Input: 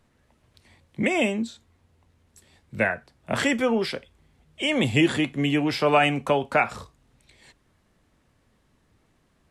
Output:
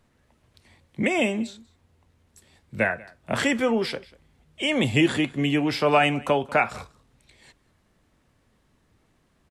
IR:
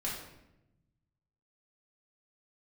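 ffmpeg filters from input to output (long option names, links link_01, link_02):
-af "aecho=1:1:190:0.0708"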